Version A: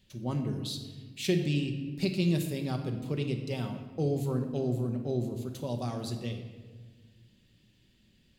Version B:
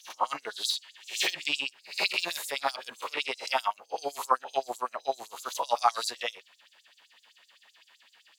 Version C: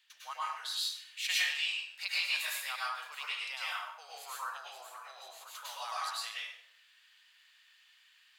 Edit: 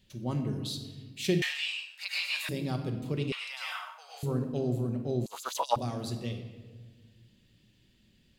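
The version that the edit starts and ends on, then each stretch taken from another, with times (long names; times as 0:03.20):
A
0:01.42–0:02.49: punch in from C
0:03.32–0:04.23: punch in from C
0:05.26–0:05.76: punch in from B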